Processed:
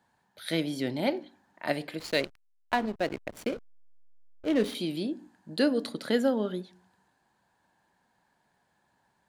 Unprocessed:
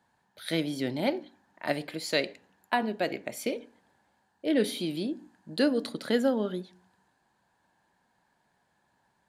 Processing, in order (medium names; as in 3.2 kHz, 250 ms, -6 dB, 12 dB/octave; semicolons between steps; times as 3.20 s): 1.99–4.75 s: hysteresis with a dead band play -31.5 dBFS